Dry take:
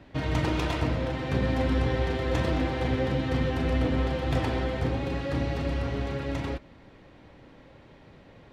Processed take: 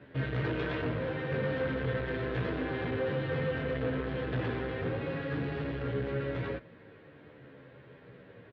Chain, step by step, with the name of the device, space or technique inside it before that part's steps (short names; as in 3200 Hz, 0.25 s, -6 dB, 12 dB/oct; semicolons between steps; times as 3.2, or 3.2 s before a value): barber-pole flanger into a guitar amplifier (endless flanger 11.7 ms -0.52 Hz; soft clip -29.5 dBFS, distortion -11 dB; speaker cabinet 100–3600 Hz, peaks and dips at 130 Hz +7 dB, 450 Hz +9 dB, 820 Hz -5 dB, 1600 Hz +8 dB)